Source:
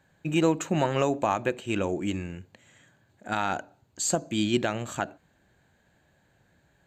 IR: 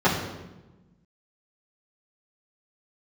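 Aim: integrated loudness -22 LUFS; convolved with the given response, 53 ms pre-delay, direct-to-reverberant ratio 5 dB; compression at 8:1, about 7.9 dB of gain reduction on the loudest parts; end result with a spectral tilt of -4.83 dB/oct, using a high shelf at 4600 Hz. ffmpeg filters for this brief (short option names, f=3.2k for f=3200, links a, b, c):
-filter_complex "[0:a]highshelf=f=4.6k:g=3,acompressor=threshold=-27dB:ratio=8,asplit=2[a][b];[1:a]atrim=start_sample=2205,adelay=53[c];[b][c]afir=irnorm=-1:irlink=0,volume=-24dB[d];[a][d]amix=inputs=2:normalize=0,volume=9.5dB"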